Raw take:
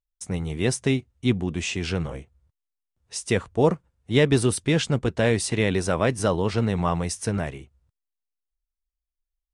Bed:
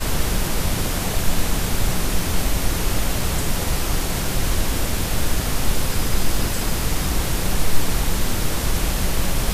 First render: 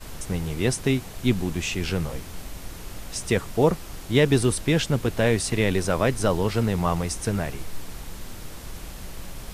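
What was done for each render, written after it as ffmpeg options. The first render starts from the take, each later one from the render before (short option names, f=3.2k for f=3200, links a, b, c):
-filter_complex "[1:a]volume=-16.5dB[a];[0:a][a]amix=inputs=2:normalize=0"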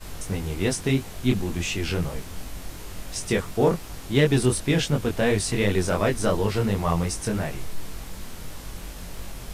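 -filter_complex "[0:a]flanger=delay=19.5:depth=4.3:speed=2.8,asplit=2[a][b];[b]asoftclip=type=tanh:threshold=-20.5dB,volume=-6.5dB[c];[a][c]amix=inputs=2:normalize=0"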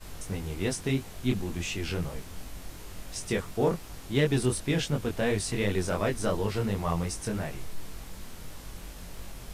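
-af "volume=-5.5dB"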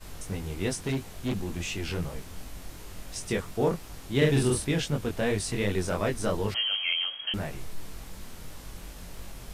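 -filter_complex "[0:a]asettb=1/sr,asplit=3[a][b][c];[a]atrim=end=0.834[d];[b]atrim=start=0.83:end=1.98,asetpts=PTS-STARTPTS,afade=t=in:d=0.004:c=qsin,afade=t=out:st=1.146:d=0.004:c=qsin,asoftclip=type=hard:threshold=-25dB[e];[c]atrim=start=1.976[f];[d][e]acrossfade=d=0.004:c1=hsin:c2=qsin[g];[g][f]acrossfade=d=0.004:c1=qsin:c2=hsin,asettb=1/sr,asplit=3[h][i][j];[h]atrim=end=4.174[k];[i]atrim=start=4.17:end=4.67,asetpts=PTS-STARTPTS,afade=t=in:d=0.004:c=qsin,afade=t=out:st=0.496:d=0.004:c=qsin,asplit=2[l][m];[m]adelay=45,volume=-2dB[n];[l][n]amix=inputs=2:normalize=0,atrim=end_sample=22050[o];[j]atrim=start=4.666[p];[k][o]acrossfade=d=0.004:c1=hsin:c2=qsin[q];[q][p]acrossfade=d=0.004:c1=qsin:c2=hsin,asettb=1/sr,asplit=3[r][s][t];[r]atrim=end=6.544[u];[s]atrim=start=6.54:end=7.34,asetpts=PTS-STARTPTS,afade=t=in:d=0.004:c=qsin,afade=t=out:st=0.796:d=0.004:c=qsin,lowpass=f=2.8k:t=q:w=0.5098,lowpass=f=2.8k:t=q:w=0.6013,lowpass=f=2.8k:t=q:w=0.9,lowpass=f=2.8k:t=q:w=2.563,afreqshift=-3300[v];[t]atrim=start=7.336[w];[u][v]acrossfade=d=0.004:c1=hsin:c2=qsin[x];[x][w]acrossfade=d=0.004:c1=qsin:c2=hsin"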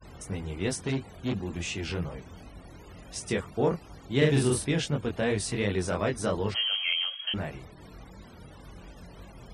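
-af "afftfilt=real='re*gte(hypot(re,im),0.00447)':imag='im*gte(hypot(re,im),0.00447)':win_size=1024:overlap=0.75,highpass=56"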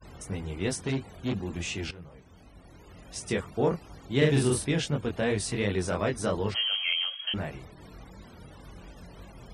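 -filter_complex "[0:a]asplit=2[a][b];[a]atrim=end=1.91,asetpts=PTS-STARTPTS,afade=t=out:st=1.906:d=0.004:c=hsin:silence=0.149624[c];[b]atrim=start=1.91,asetpts=PTS-STARTPTS,afade=t=in:d=1.44:silence=0.149624[d];[c][d]concat=n=2:v=0:a=1"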